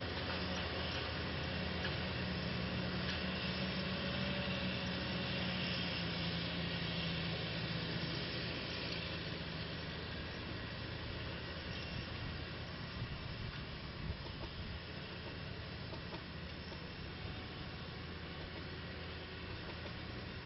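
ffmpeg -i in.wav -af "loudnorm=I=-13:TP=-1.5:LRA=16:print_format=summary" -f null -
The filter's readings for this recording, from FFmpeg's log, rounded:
Input Integrated:    -41.9 LUFS
Input True Peak:     -26.0 dBTP
Input LRA:             7.7 LU
Input Threshold:     -51.9 LUFS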